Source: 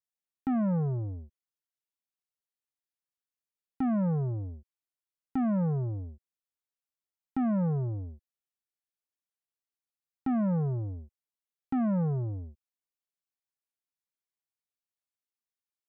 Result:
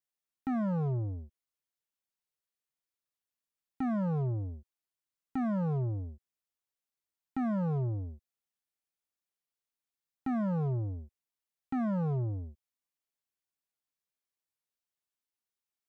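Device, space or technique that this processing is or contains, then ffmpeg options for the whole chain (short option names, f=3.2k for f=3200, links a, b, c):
limiter into clipper: -af "alimiter=level_in=3.5dB:limit=-24dB:level=0:latency=1:release=37,volume=-3.5dB,asoftclip=type=hard:threshold=-29.5dB"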